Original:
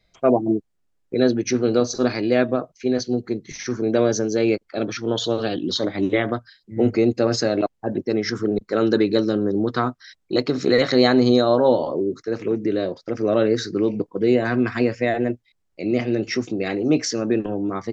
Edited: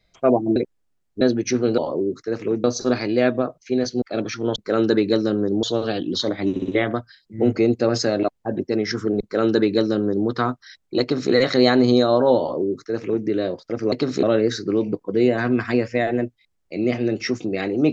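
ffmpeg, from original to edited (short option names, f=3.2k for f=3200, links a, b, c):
-filter_complex "[0:a]asplit=13[a][b][c][d][e][f][g][h][i][j][k][l][m];[a]atrim=end=0.562[n];[b]atrim=start=0.558:end=1.212,asetpts=PTS-STARTPTS,areverse[o];[c]atrim=start=1.208:end=1.782[p];[d]atrim=start=11.778:end=12.642[q];[e]atrim=start=1.778:end=3.162[r];[f]atrim=start=4.648:end=5.192[s];[g]atrim=start=8.588:end=9.662[t];[h]atrim=start=5.188:end=6.122[u];[i]atrim=start=6.058:end=6.122[v];[j]atrim=start=6.058:end=6.122[w];[k]atrim=start=6.058:end=13.302[x];[l]atrim=start=10.388:end=10.702[y];[m]atrim=start=13.298[z];[n][o]acrossfade=d=0.004:c1=hsin:c2=hsin[aa];[aa][p]acrossfade=d=0.004:c1=hsin:c2=hsin[ab];[ab][q]acrossfade=d=0.004:c1=hsin:c2=hsin[ac];[ac][r]acrossfade=d=0.004:c1=hsin:c2=hsin[ad];[ad][s]acrossfade=d=0.004:c1=hsin:c2=hsin[ae];[ae][t]acrossfade=d=0.004:c1=hsin:c2=hsin[af];[af][u]acrossfade=d=0.004:c1=hsin:c2=hsin[ag];[ag][v]acrossfade=d=0.004:c1=hsin:c2=hsin[ah];[ah][w]acrossfade=d=0.004:c1=hsin:c2=hsin[ai];[ai][x]acrossfade=d=0.004:c1=hsin:c2=hsin[aj];[aj][y]acrossfade=d=0.004:c1=hsin:c2=hsin[ak];[ak][z]acrossfade=d=0.004:c1=hsin:c2=hsin"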